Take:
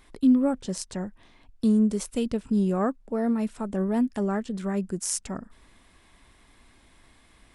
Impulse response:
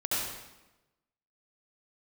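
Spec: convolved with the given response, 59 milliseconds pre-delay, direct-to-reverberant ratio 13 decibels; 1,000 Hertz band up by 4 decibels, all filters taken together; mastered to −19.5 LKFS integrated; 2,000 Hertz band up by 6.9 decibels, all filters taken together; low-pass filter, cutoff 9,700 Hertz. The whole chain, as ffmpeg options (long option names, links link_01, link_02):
-filter_complex "[0:a]lowpass=9700,equalizer=frequency=1000:width_type=o:gain=3.5,equalizer=frequency=2000:width_type=o:gain=7.5,asplit=2[link_01][link_02];[1:a]atrim=start_sample=2205,adelay=59[link_03];[link_02][link_03]afir=irnorm=-1:irlink=0,volume=-21dB[link_04];[link_01][link_04]amix=inputs=2:normalize=0,volume=6.5dB"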